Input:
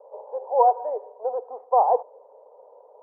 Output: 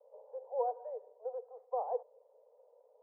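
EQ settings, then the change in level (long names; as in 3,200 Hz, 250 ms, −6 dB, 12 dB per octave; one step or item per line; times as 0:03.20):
Butterworth high-pass 440 Hz 96 dB per octave
high-frequency loss of the air 400 metres
parametric band 920 Hz −14.5 dB 1.4 octaves
−5.5 dB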